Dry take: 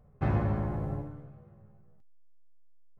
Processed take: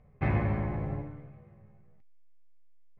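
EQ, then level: air absorption 94 m; bell 2200 Hz +12.5 dB 0.57 oct; notch 1400 Hz, Q 11; 0.0 dB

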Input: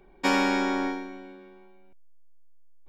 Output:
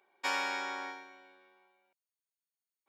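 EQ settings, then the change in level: HPF 810 Hz 12 dB/oct; -6.0 dB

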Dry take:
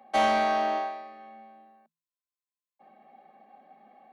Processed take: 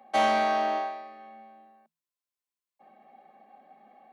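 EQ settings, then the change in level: low shelf 90 Hz -6.5 dB; 0.0 dB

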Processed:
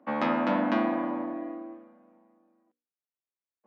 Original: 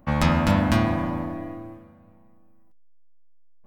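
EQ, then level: steep high-pass 240 Hz 36 dB/oct; air absorption 150 m; tape spacing loss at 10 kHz 21 dB; 0.0 dB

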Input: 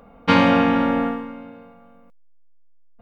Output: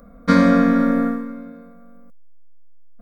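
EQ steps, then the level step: low shelf 250 Hz +11 dB; high shelf 4000 Hz +10.5 dB; fixed phaser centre 570 Hz, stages 8; -1.0 dB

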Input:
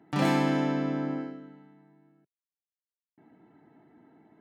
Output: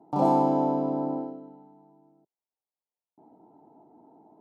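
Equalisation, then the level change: EQ curve 130 Hz 0 dB, 910 Hz +14 dB, 1800 Hz -22 dB, 4700 Hz -7 dB; -4.5 dB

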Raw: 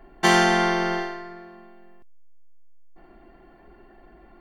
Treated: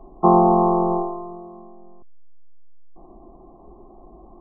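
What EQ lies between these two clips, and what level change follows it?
brick-wall FIR low-pass 1300 Hz; +5.5 dB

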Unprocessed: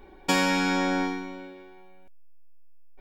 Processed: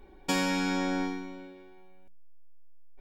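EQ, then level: low shelf 390 Hz +7.5 dB; bell 10000 Hz +4.5 dB 2.8 oct; notches 60/120/180/240/300/360 Hz; -8.0 dB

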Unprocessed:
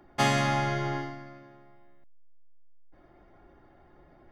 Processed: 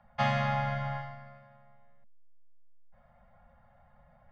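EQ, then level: Chebyshev band-stop 230–520 Hz, order 4; air absorption 240 m; -1.5 dB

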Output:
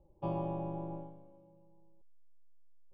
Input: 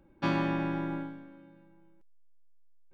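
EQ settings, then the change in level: running mean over 22 samples; air absorption 230 m; fixed phaser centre 620 Hz, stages 4; +1.0 dB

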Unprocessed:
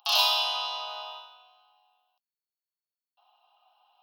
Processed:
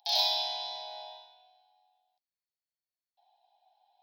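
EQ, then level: Butterworth band-stop 1200 Hz, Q 1.4; high shelf 8900 Hz -10 dB; fixed phaser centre 1900 Hz, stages 8; 0.0 dB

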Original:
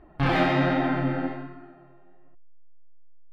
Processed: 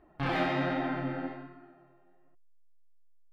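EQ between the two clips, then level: low shelf 130 Hz -7 dB; -6.5 dB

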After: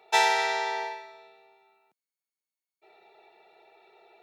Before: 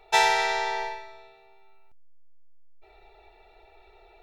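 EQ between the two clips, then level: HPF 170 Hz 24 dB/oct; -1.5 dB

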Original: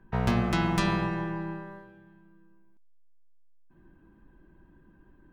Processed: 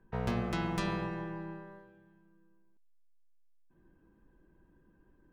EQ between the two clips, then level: bell 480 Hz +7 dB 0.42 oct; -8.0 dB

